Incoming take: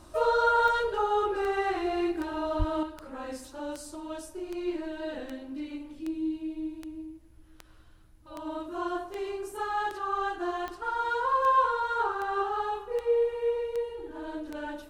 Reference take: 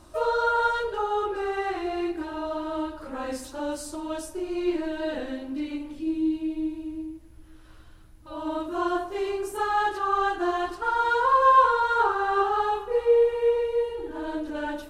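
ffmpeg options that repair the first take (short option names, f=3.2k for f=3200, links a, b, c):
-filter_complex "[0:a]adeclick=t=4,asplit=3[a][b][c];[a]afade=t=out:st=2.58:d=0.02[d];[b]highpass=f=140:w=0.5412,highpass=f=140:w=1.3066,afade=t=in:st=2.58:d=0.02,afade=t=out:st=2.7:d=0.02[e];[c]afade=t=in:st=2.7:d=0.02[f];[d][e][f]amix=inputs=3:normalize=0,asetnsamples=n=441:p=0,asendcmd='2.83 volume volume 6dB',volume=0dB"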